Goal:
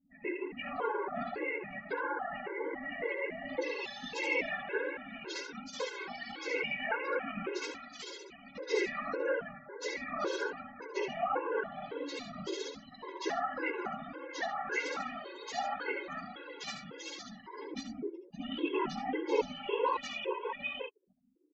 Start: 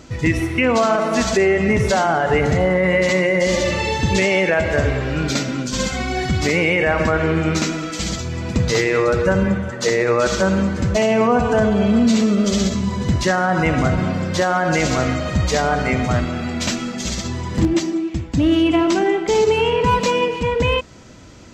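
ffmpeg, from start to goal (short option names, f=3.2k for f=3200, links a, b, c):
-af "asetnsamples=n=441:p=0,asendcmd='3.62 lowpass f 5700',lowpass=2.2k,afftfilt=real='re*gte(hypot(re,im),0.0316)':imag='im*gte(hypot(re,im),0.0316)':win_size=1024:overlap=0.75,aecho=1:1:74:0.376,flanger=delay=8:depth=4.1:regen=6:speed=0.38:shape=sinusoidal,highpass=f=340:w=0.5412,highpass=f=340:w=1.3066,afftfilt=real='hypot(re,im)*cos(2*PI*random(0))':imag='hypot(re,im)*sin(2*PI*random(1))':win_size=512:overlap=0.75,flanger=delay=3.6:depth=1.6:regen=-2:speed=1.4:shape=sinusoidal,equalizer=f=620:w=6.9:g=-13,afftfilt=real='re*gt(sin(2*PI*1.8*pts/sr)*(1-2*mod(floor(b*sr/1024/280),2)),0)':imag='im*gt(sin(2*PI*1.8*pts/sr)*(1-2*mod(floor(b*sr/1024/280),2)),0)':win_size=1024:overlap=0.75"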